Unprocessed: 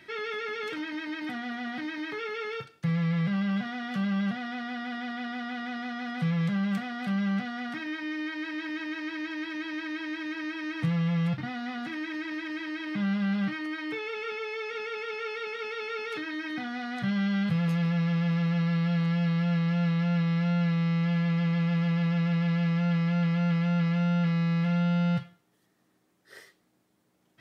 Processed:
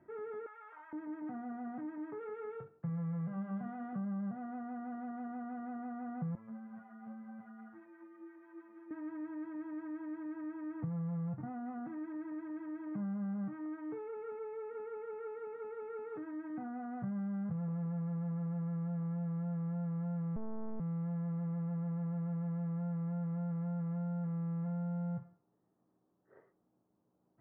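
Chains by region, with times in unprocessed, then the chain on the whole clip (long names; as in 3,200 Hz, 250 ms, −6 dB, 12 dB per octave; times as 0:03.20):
0:00.46–0:00.93: high-pass filter 860 Hz 24 dB per octave + envelope flattener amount 70%
0:02.21–0:03.93: high-shelf EQ 2,700 Hz +8 dB + mains-hum notches 50/100/150/200/250/300/350/400/450/500 Hz
0:06.35–0:08.91: low-shelf EQ 420 Hz −11 dB + phases set to zero 111 Hz + string-ensemble chorus
0:20.36–0:20.80: parametric band 250 Hz +12 dB 0.47 octaves + log-companded quantiser 2 bits + one-pitch LPC vocoder at 8 kHz 220 Hz
whole clip: low-pass filter 1,100 Hz 24 dB per octave; downward compressor, threshold −29 dBFS; level −6 dB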